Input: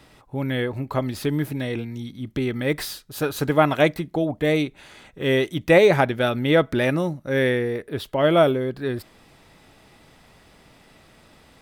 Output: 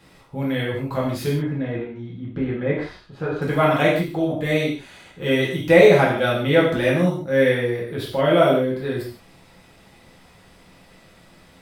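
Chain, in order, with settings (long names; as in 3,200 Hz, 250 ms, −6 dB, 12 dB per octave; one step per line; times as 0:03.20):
0:01.29–0:03.42: low-pass filter 1,700 Hz 12 dB per octave
reverb whose tail is shaped and stops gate 200 ms falling, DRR −5 dB
level −4.5 dB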